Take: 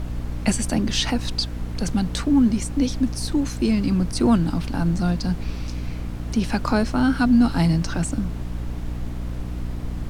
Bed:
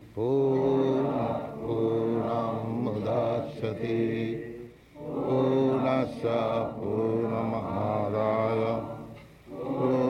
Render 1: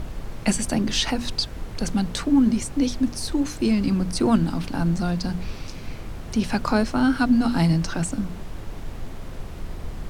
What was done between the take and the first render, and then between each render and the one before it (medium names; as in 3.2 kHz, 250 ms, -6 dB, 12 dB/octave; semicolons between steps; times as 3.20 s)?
hum notches 60/120/180/240/300 Hz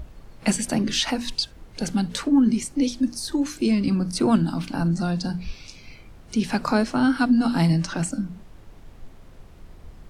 noise print and reduce 12 dB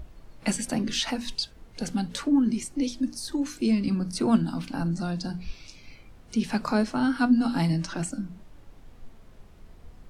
flange 0.37 Hz, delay 2.7 ms, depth 2.2 ms, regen +79%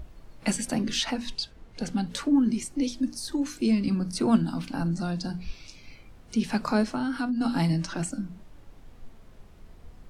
1.04–2.07 s: treble shelf 8.1 kHz -9.5 dB; 6.84–7.41 s: compression 10:1, threshold -24 dBFS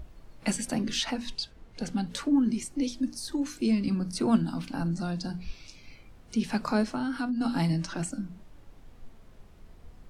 trim -2 dB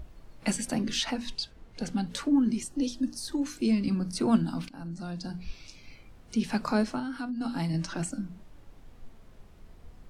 2.62–3.16 s: Butterworth band-stop 2.2 kHz, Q 4.6; 4.69–5.56 s: fade in, from -14.5 dB; 7.00–7.74 s: gain -4 dB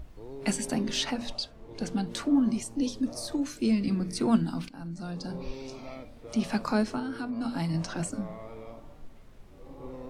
add bed -17.5 dB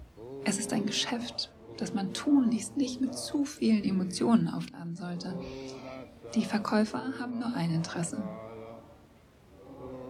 high-pass 57 Hz 24 dB/octave; hum notches 50/100/150/200/250 Hz